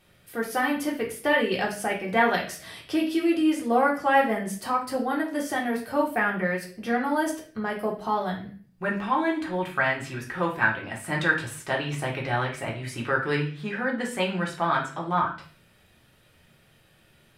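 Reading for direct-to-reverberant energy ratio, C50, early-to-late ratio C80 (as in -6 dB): -2.0 dB, 8.0 dB, 13.0 dB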